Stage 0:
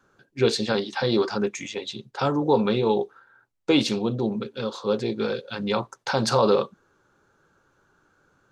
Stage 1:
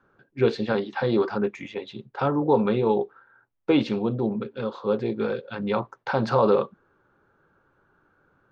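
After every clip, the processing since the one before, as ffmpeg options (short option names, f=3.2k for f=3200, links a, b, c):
-af "lowpass=2.2k"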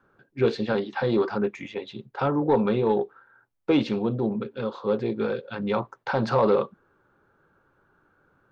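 -af "asoftclip=type=tanh:threshold=-10dB"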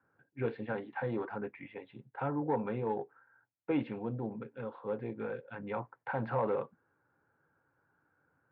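-af "highpass=100,equalizer=f=200:t=q:w=4:g=-9,equalizer=f=380:t=q:w=4:g=-10,equalizer=f=600:t=q:w=4:g=-5,equalizer=f=1.2k:t=q:w=4:g=-8,lowpass=f=2.2k:w=0.5412,lowpass=f=2.2k:w=1.3066,volume=-6.5dB"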